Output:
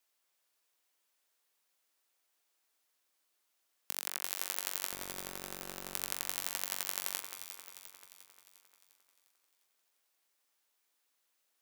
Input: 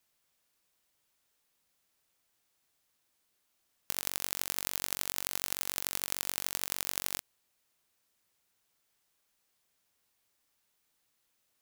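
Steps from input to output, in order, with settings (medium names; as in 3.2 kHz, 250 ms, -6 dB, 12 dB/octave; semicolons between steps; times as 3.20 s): Bessel high-pass 370 Hz, order 4; 4.92–5.95 s: integer overflow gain 12.5 dB; on a send: echo whose repeats swap between lows and highs 176 ms, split 2.2 kHz, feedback 73%, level -6.5 dB; on the sum: trim -2.5 dB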